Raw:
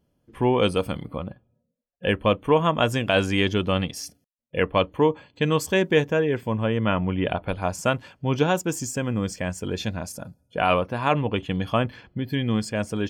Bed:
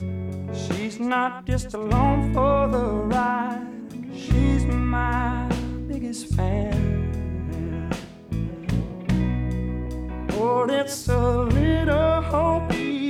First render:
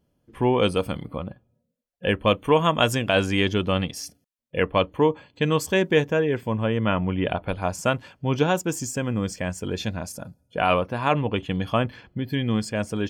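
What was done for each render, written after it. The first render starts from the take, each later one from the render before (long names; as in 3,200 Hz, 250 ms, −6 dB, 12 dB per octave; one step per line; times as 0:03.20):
0:02.27–0:02.95: high-shelf EQ 2,700 Hz +7.5 dB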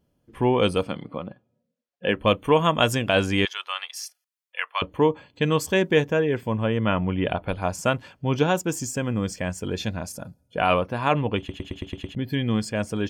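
0:00.83–0:02.17: band-pass filter 160–5,500 Hz
0:03.45–0:04.82: high-pass filter 1,000 Hz 24 dB per octave
0:11.38: stutter in place 0.11 s, 7 plays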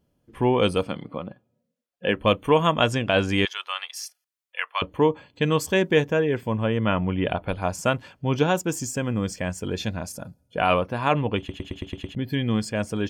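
0:02.74–0:03.29: high-frequency loss of the air 63 metres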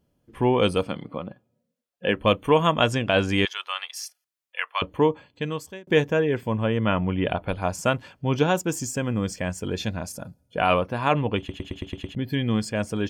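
0:05.01–0:05.87: fade out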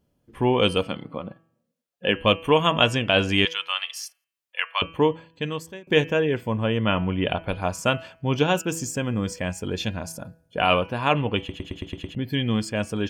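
hum removal 163.7 Hz, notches 19
dynamic equaliser 2,900 Hz, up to +7 dB, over −44 dBFS, Q 2.9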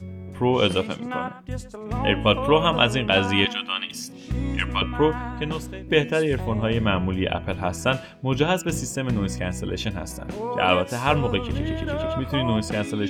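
mix in bed −7.5 dB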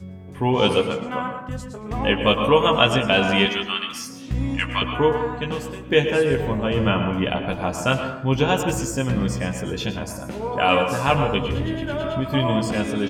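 double-tracking delay 15 ms −5.5 dB
dense smooth reverb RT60 0.8 s, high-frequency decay 0.3×, pre-delay 95 ms, DRR 6 dB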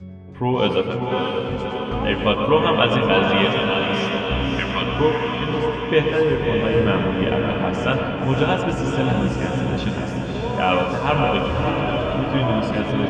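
high-frequency loss of the air 150 metres
feedback delay with all-pass diffusion 591 ms, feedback 61%, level −3.5 dB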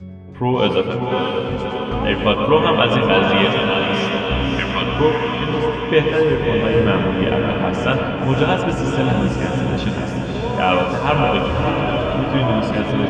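level +2.5 dB
brickwall limiter −2 dBFS, peak gain reduction 1.5 dB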